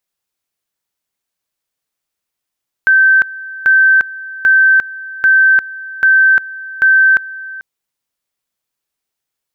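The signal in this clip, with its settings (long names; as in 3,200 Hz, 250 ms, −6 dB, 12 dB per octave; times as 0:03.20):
tone at two levels in turn 1,550 Hz −5.5 dBFS, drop 19 dB, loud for 0.35 s, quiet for 0.44 s, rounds 6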